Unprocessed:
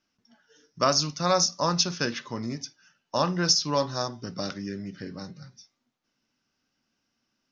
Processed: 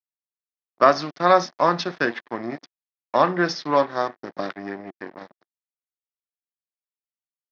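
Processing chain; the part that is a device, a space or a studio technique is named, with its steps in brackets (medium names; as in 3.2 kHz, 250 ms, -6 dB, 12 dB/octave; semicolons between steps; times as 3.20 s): blown loudspeaker (crossover distortion -37 dBFS; cabinet simulation 230–3500 Hz, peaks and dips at 350 Hz +5 dB, 700 Hz +5 dB, 1.1 kHz +3 dB, 1.8 kHz +7 dB, 2.8 kHz -6 dB); trim +6.5 dB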